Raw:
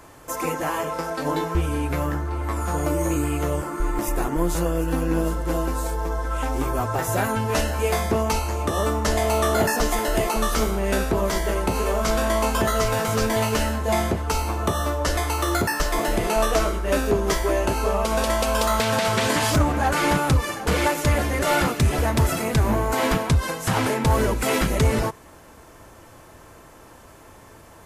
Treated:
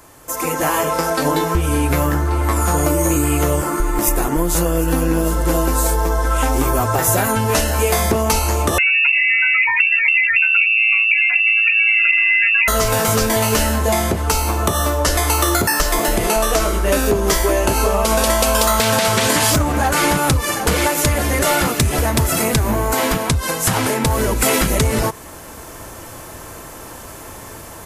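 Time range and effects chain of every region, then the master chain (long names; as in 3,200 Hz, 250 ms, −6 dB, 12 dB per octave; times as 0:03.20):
0:08.78–0:12.68: expanding power law on the bin magnitudes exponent 2.6 + double-tracking delay 14 ms −14 dB + voice inversion scrambler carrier 2,700 Hz
whole clip: downward compressor, threshold −23 dBFS; high-shelf EQ 6,000 Hz +9.5 dB; automatic gain control gain up to 11 dB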